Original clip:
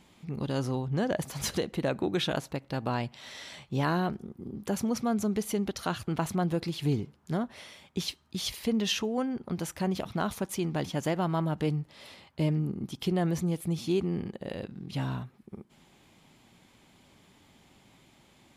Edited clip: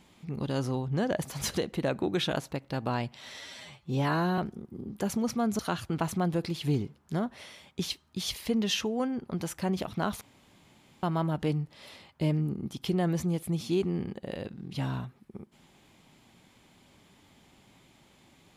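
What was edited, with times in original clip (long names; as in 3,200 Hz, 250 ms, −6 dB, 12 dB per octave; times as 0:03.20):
0:03.39–0:04.05: time-stretch 1.5×
0:05.26–0:05.77: remove
0:10.39–0:11.21: fill with room tone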